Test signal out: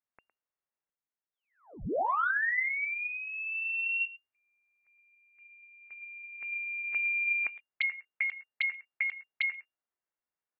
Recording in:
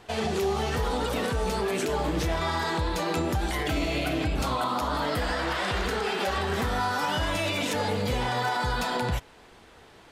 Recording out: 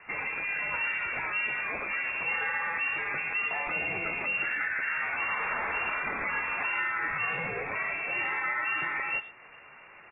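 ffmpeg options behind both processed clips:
-filter_complex "[0:a]equalizer=f=250:w=0.83:g=-14.5,asplit=2[a][b];[b]acompressor=threshold=-39dB:ratio=8,volume=2dB[c];[a][c]amix=inputs=2:normalize=0,lowpass=f=2.4k:t=q:w=0.5098,lowpass=f=2.4k:t=q:w=0.6013,lowpass=f=2.4k:t=q:w=0.9,lowpass=f=2.4k:t=q:w=2.563,afreqshift=-2800,asplit=2[d][e];[e]adelay=110,highpass=300,lowpass=3.4k,asoftclip=type=hard:threshold=-26dB,volume=-14dB[f];[d][f]amix=inputs=2:normalize=0,volume=-3.5dB" -ar 32000 -c:a aac -b:a 16k

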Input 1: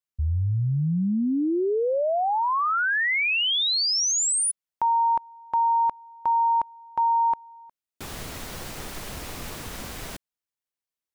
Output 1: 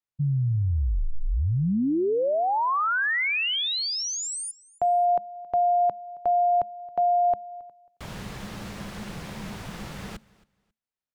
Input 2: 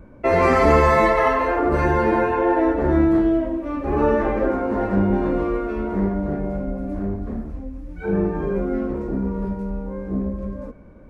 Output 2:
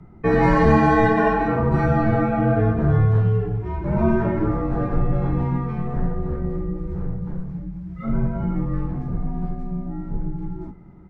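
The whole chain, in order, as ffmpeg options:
-af "afreqshift=-220,aemphasis=mode=reproduction:type=50kf,aecho=1:1:271|542:0.0708|0.0149"

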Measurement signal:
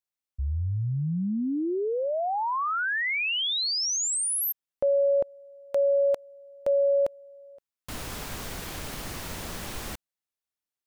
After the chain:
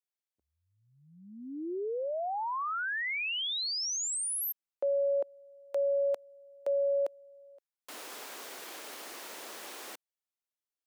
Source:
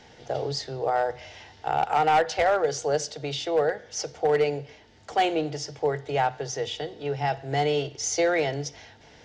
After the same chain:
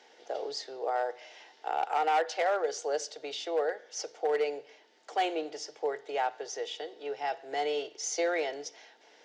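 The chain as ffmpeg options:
-af "highpass=f=330:w=0.5412,highpass=f=330:w=1.3066,volume=-6dB"

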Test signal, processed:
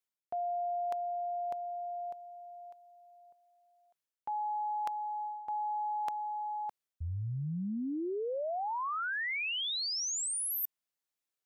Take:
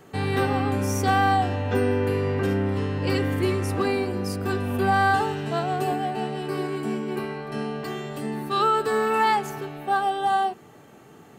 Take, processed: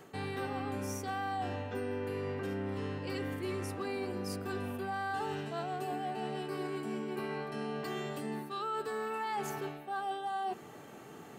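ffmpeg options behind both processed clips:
-af "lowshelf=f=120:g=-8,areverse,acompressor=threshold=-35dB:ratio=6,areverse"

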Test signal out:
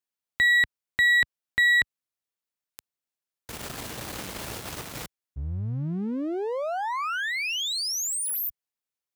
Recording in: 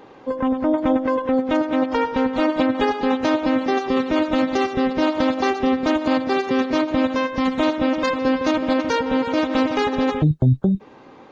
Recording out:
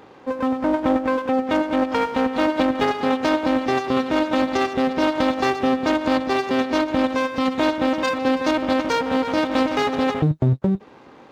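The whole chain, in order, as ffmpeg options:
-af "aeval=exprs='if(lt(val(0),0),0.251*val(0),val(0))':c=same,highpass=66,volume=2.5dB"

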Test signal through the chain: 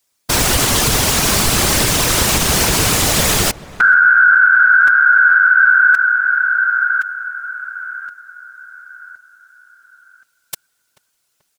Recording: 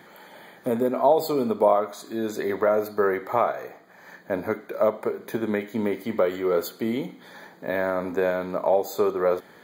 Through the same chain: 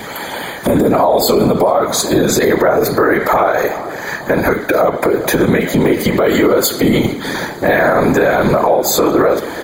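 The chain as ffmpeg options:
-filter_complex "[0:a]afftfilt=real='hypot(re,im)*cos(2*PI*random(0))':imag='hypot(re,im)*sin(2*PI*random(1))':win_size=512:overlap=0.75,acompressor=threshold=-31dB:ratio=6,equalizer=f=7.4k:t=o:w=1.9:g=6,asplit=2[a][b];[b]adelay=435,lowpass=f=1.6k:p=1,volume=-19dB,asplit=2[c][d];[d]adelay=435,lowpass=f=1.6k:p=1,volume=0.54,asplit=2[e][f];[f]adelay=435,lowpass=f=1.6k:p=1,volume=0.54,asplit=2[g][h];[h]adelay=435,lowpass=f=1.6k:p=1,volume=0.54[i];[a][c][e][g][i]amix=inputs=5:normalize=0,adynamicequalizer=threshold=0.00398:dfrequency=1600:dqfactor=5.6:tfrequency=1600:tqfactor=5.6:attack=5:release=100:ratio=0.375:range=2.5:mode=boostabove:tftype=bell,alimiter=level_in=30.5dB:limit=-1dB:release=50:level=0:latency=1,volume=-2.5dB"

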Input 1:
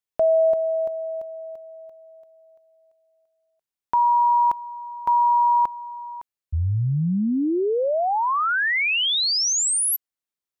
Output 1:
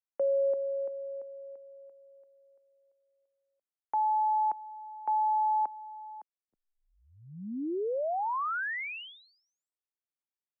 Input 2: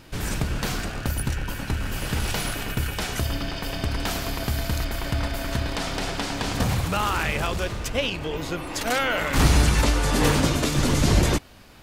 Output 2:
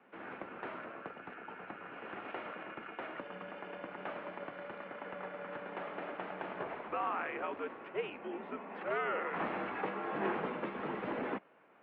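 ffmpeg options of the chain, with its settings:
-filter_complex "[0:a]highpass=f=250:t=q:w=0.5412,highpass=f=250:t=q:w=1.307,lowpass=f=3k:t=q:w=0.5176,lowpass=f=3k:t=q:w=0.7071,lowpass=f=3k:t=q:w=1.932,afreqshift=-96,acrossover=split=240 2000:gain=0.112 1 0.178[a][b][c];[a][b][c]amix=inputs=3:normalize=0,volume=-9dB"

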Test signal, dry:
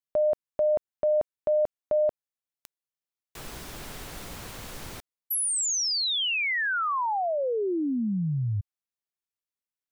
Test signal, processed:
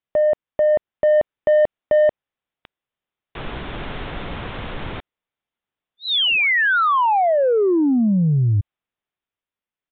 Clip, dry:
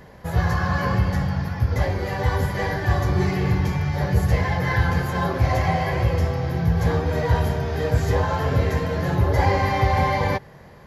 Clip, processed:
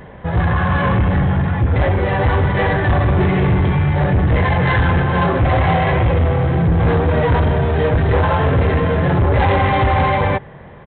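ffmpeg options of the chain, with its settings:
-af "highshelf=f=2.7k:g=-3.5,dynaudnorm=f=110:g=17:m=3.5dB,aresample=8000,asoftclip=type=tanh:threshold=-19dB,aresample=44100,volume=8.5dB"

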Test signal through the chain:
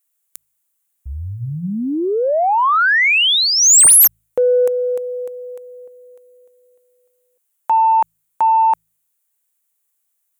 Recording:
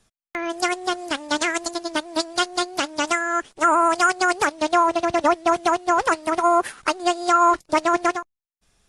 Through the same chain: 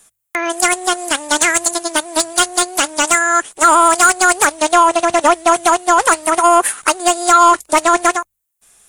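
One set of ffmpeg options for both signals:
-filter_complex "[0:a]aexciter=amount=9.2:drive=2.3:freq=7.1k,asplit=2[a][b];[b]highpass=f=720:p=1,volume=14dB,asoftclip=type=tanh:threshold=-1dB[c];[a][c]amix=inputs=2:normalize=0,lowpass=f=5.3k:p=1,volume=-6dB,bandreject=f=53.99:t=h:w=4,bandreject=f=107.98:t=h:w=4,bandreject=f=161.97:t=h:w=4,volume=2dB"

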